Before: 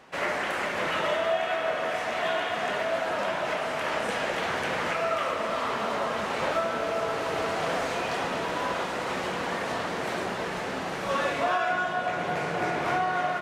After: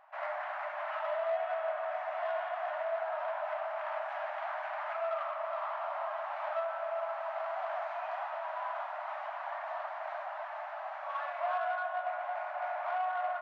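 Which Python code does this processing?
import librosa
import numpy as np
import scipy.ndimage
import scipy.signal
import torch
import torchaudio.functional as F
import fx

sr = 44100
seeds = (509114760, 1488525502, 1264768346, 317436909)

y = scipy.signal.sosfilt(scipy.signal.butter(2, 1200.0, 'lowpass', fs=sr, output='sos'), x)
y = 10.0 ** (-21.5 / 20.0) * np.tanh(y / 10.0 ** (-21.5 / 20.0))
y = fx.brickwall_highpass(y, sr, low_hz=580.0)
y = y * librosa.db_to_amplitude(-3.5)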